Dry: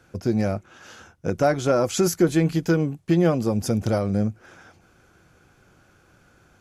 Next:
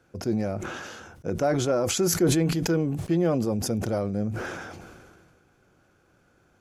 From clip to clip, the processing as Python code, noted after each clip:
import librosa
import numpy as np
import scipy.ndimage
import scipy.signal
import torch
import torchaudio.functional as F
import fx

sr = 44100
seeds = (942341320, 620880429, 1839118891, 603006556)

y = fx.peak_eq(x, sr, hz=420.0, db=4.5, octaves=2.3)
y = fx.sustainer(y, sr, db_per_s=30.0)
y = F.gain(torch.from_numpy(y), -8.5).numpy()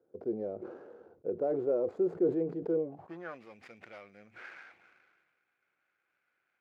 y = scipy.signal.medfilt(x, 15)
y = fx.filter_sweep_bandpass(y, sr, from_hz=440.0, to_hz=2200.0, start_s=2.76, end_s=3.42, q=3.7)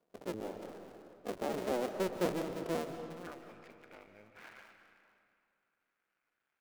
y = fx.cycle_switch(x, sr, every=2, mode='muted')
y = fx.rev_freeverb(y, sr, rt60_s=2.4, hf_ratio=0.6, predelay_ms=105, drr_db=7.5)
y = F.gain(torch.from_numpy(y), -3.0).numpy()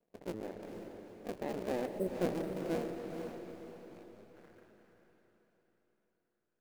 y = scipy.signal.medfilt(x, 41)
y = fx.spec_erase(y, sr, start_s=1.87, length_s=0.27, low_hz=660.0, high_hz=7700.0)
y = fx.echo_diffused(y, sr, ms=469, feedback_pct=42, wet_db=-7)